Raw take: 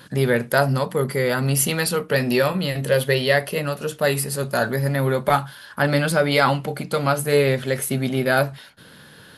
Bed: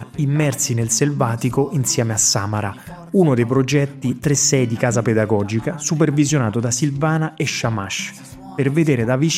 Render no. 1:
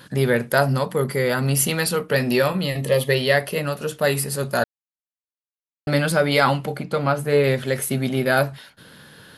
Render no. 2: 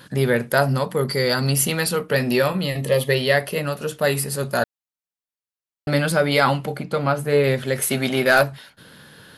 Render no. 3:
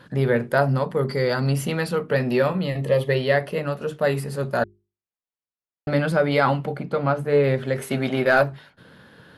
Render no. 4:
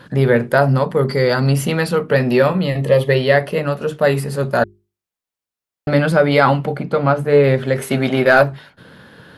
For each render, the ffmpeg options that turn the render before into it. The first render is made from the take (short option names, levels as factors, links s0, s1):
-filter_complex "[0:a]asettb=1/sr,asplit=3[s0][s1][s2];[s0]atrim=end=2.644[s3];[s1]atrim=start=2.64:end=3.1,asetpts=PTS-STARTPTS,afade=t=in:d=0.004:c=qsin,afade=t=out:st=0.456:d=0.004:c=qsin,asuperstop=centerf=1500:order=8:qfactor=4.8[s4];[s2]atrim=start=3.096[s5];[s3][s4]acrossfade=d=0.004:c1=hsin:c2=qsin[s6];[s6][s5]acrossfade=d=0.004:c1=qsin:c2=hsin,asettb=1/sr,asplit=3[s7][s8][s9];[s7]atrim=end=6.774[s10];[s8]atrim=start=6.77:end=7.44,asetpts=PTS-STARTPTS,afade=t=in:d=0.004:c=qsin,afade=t=out:st=0.666:d=0.004:c=qsin,highshelf=f=4200:g=-11.5[s11];[s9]atrim=start=7.436[s12];[s10][s11]acrossfade=d=0.004:c1=hsin:c2=qsin[s13];[s13][s12]acrossfade=d=0.004:c1=qsin:c2=hsin,asplit=3[s14][s15][s16];[s14]atrim=end=4.64,asetpts=PTS-STARTPTS,afade=t=out:st=4.636:d=0.004:c=hsin[s17];[s15]atrim=start=4.64:end=5.87,asetpts=PTS-STARTPTS,volume=0[s18];[s16]atrim=start=5.87,asetpts=PTS-STARTPTS,afade=t=in:d=0.004:c=hsin[s19];[s17][s18][s19]concat=n=3:v=0:a=1"
-filter_complex "[0:a]asettb=1/sr,asplit=3[s0][s1][s2];[s0]atrim=end=1.084[s3];[s1]atrim=start=1.08:end=1.51,asetpts=PTS-STARTPTS,afade=t=in:d=0.004:c=qsin,afade=t=out:st=0.426:d=0.004:c=qsin,equalizer=f=4600:w=3.7:g=13.5[s4];[s2]atrim=start=1.506[s5];[s3][s4]acrossfade=d=0.004:c1=hsin:c2=qsin[s6];[s6][s5]acrossfade=d=0.004:c1=qsin:c2=hsin,asplit=3[s7][s8][s9];[s7]afade=t=out:st=7.81:d=0.02[s10];[s8]asplit=2[s11][s12];[s12]highpass=f=720:p=1,volume=4.47,asoftclip=type=tanh:threshold=0.562[s13];[s11][s13]amix=inputs=2:normalize=0,lowpass=f=7500:p=1,volume=0.501,afade=t=in:st=7.81:d=0.02,afade=t=out:st=8.42:d=0.02[s14];[s9]afade=t=in:st=8.42:d=0.02[s15];[s10][s14][s15]amix=inputs=3:normalize=0"
-af "lowpass=f=1500:p=1,bandreject=f=50:t=h:w=6,bandreject=f=100:t=h:w=6,bandreject=f=150:t=h:w=6,bandreject=f=200:t=h:w=6,bandreject=f=250:t=h:w=6,bandreject=f=300:t=h:w=6,bandreject=f=350:t=h:w=6,bandreject=f=400:t=h:w=6"
-af "volume=2.11,alimiter=limit=0.891:level=0:latency=1"